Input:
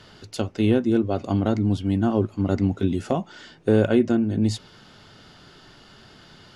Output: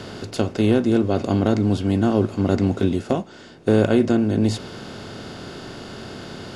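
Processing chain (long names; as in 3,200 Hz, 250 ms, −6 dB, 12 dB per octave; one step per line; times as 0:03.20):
compressor on every frequency bin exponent 0.6
0:02.89–0:03.69: expander for the loud parts 1.5 to 1, over −34 dBFS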